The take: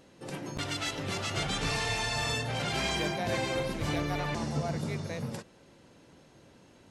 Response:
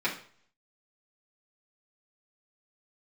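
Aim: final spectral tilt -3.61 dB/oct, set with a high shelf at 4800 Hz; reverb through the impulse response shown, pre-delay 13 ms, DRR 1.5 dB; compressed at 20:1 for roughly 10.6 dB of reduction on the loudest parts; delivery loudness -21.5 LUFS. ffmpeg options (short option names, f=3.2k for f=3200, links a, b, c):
-filter_complex "[0:a]highshelf=f=4.8k:g=8,acompressor=threshold=-36dB:ratio=20,asplit=2[a][b];[1:a]atrim=start_sample=2205,adelay=13[c];[b][c]afir=irnorm=-1:irlink=0,volume=-11.5dB[d];[a][d]amix=inputs=2:normalize=0,volume=16.5dB"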